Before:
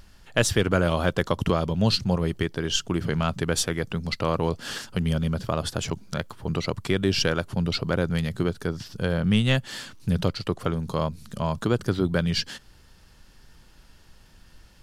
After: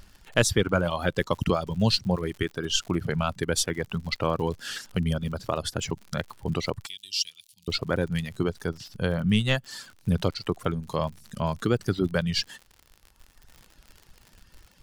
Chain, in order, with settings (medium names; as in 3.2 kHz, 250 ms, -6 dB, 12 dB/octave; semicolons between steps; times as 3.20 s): reverb removal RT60 1.7 s; crackle 78 per s -37 dBFS; 6.86–7.68 s: inverse Chebyshev high-pass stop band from 1.6 kHz, stop band 40 dB